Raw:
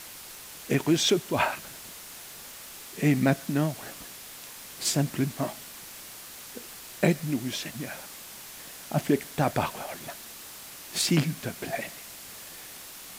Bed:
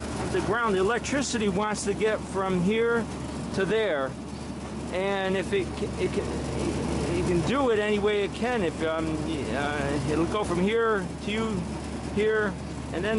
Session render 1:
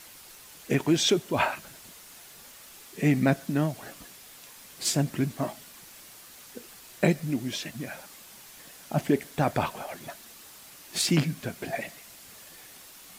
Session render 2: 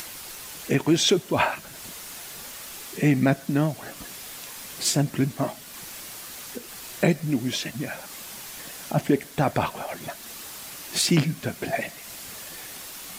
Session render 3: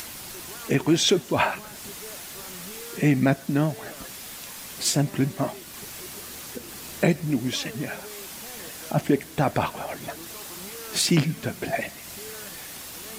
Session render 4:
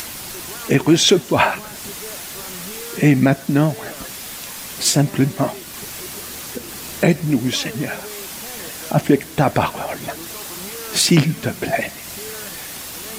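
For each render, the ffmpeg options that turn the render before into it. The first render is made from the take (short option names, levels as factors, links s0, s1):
-af "afftdn=nr=6:nf=-44"
-filter_complex "[0:a]asplit=2[s0][s1];[s1]alimiter=limit=0.106:level=0:latency=1:release=392,volume=0.841[s2];[s0][s2]amix=inputs=2:normalize=0,acompressor=mode=upward:threshold=0.0251:ratio=2.5"
-filter_complex "[1:a]volume=0.106[s0];[0:a][s0]amix=inputs=2:normalize=0"
-af "volume=2.24,alimiter=limit=0.794:level=0:latency=1"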